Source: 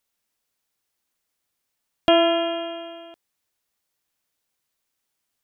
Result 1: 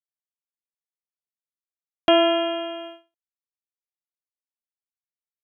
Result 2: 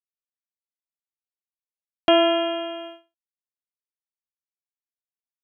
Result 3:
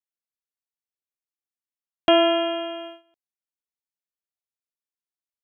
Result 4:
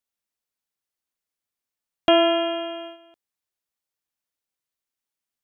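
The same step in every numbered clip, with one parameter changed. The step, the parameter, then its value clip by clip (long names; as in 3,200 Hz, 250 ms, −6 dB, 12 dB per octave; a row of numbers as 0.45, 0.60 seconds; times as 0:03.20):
noise gate, range: −41, −54, −22, −10 decibels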